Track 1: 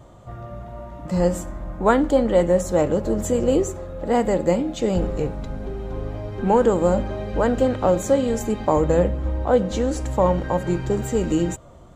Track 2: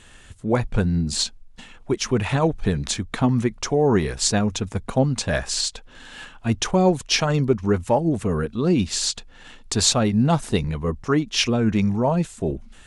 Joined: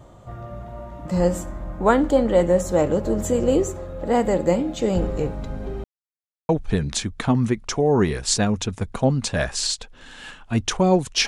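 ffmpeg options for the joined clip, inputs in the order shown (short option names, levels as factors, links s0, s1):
-filter_complex "[0:a]apad=whole_dur=11.27,atrim=end=11.27,asplit=2[s0][s1];[s0]atrim=end=5.84,asetpts=PTS-STARTPTS,afade=t=out:st=5.836:d=0.004:c=hsin[s2];[s1]atrim=start=5.84:end=6.49,asetpts=PTS-STARTPTS,volume=0[s3];[1:a]atrim=start=2.43:end=7.21,asetpts=PTS-STARTPTS,afade=t=in:d=0.004:c=hsin[s4];[s2][s3][s4]concat=n=3:v=0:a=1"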